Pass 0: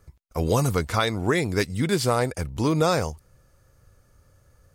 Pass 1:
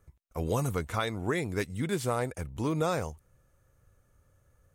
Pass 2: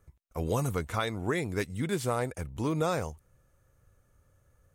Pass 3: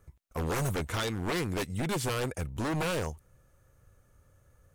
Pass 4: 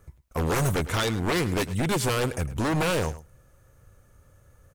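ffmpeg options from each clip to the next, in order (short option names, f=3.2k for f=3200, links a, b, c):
-af "equalizer=f=4.8k:w=3.4:g=-10,volume=-7.5dB"
-af anull
-af "aeval=exprs='0.0398*(abs(mod(val(0)/0.0398+3,4)-2)-1)':c=same,volume=3dB"
-af "aecho=1:1:106:0.158,volume=6dB"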